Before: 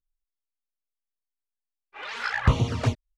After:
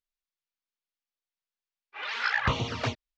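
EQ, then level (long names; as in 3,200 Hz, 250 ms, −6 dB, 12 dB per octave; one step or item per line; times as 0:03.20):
Bessel low-pass filter 3,700 Hz, order 8
spectral tilt +3 dB per octave
0.0 dB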